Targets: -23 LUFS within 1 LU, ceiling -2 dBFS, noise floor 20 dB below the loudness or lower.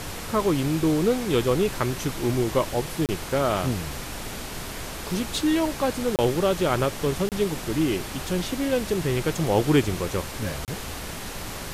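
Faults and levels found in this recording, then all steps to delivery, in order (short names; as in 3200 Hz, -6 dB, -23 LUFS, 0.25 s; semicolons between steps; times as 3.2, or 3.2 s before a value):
dropouts 4; longest dropout 28 ms; noise floor -35 dBFS; noise floor target -46 dBFS; loudness -25.5 LUFS; peak -7.5 dBFS; loudness target -23.0 LUFS
-> interpolate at 3.06/6.16/7.29/10.65, 28 ms; noise print and reduce 11 dB; gain +2.5 dB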